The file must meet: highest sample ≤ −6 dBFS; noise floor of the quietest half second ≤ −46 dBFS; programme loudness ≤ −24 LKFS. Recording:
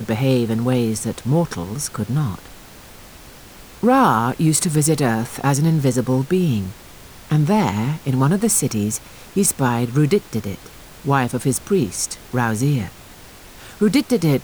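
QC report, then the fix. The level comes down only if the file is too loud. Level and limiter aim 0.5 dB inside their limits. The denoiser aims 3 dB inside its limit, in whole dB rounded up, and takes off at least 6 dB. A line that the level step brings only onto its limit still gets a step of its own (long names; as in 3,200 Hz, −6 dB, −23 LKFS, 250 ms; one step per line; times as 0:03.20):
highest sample −3.5 dBFS: out of spec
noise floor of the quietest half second −41 dBFS: out of spec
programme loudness −19.0 LKFS: out of spec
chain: level −5.5 dB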